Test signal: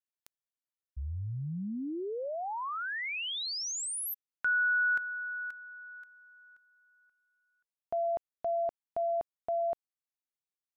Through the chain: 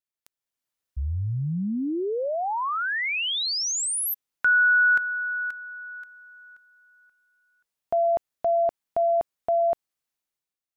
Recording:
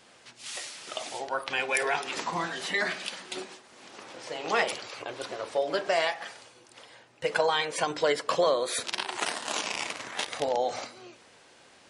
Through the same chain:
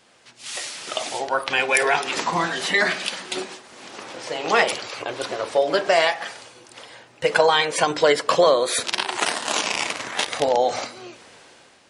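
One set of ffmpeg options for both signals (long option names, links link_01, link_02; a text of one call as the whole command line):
ffmpeg -i in.wav -af "dynaudnorm=framelen=110:gausssize=9:maxgain=9dB" out.wav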